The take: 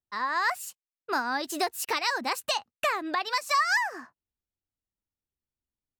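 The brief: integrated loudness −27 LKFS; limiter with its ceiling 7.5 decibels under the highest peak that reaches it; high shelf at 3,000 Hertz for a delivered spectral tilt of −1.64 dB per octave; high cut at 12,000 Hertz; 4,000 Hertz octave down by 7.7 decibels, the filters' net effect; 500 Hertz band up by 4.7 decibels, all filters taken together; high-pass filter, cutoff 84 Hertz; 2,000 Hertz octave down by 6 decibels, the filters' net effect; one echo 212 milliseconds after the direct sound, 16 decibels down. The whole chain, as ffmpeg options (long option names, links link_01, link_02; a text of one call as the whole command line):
ffmpeg -i in.wav -af "highpass=84,lowpass=12000,equalizer=frequency=500:width_type=o:gain=7,equalizer=frequency=2000:width_type=o:gain=-5.5,highshelf=frequency=3000:gain=-6.5,equalizer=frequency=4000:width_type=o:gain=-3,alimiter=limit=-21.5dB:level=0:latency=1,aecho=1:1:212:0.158,volume=5dB" out.wav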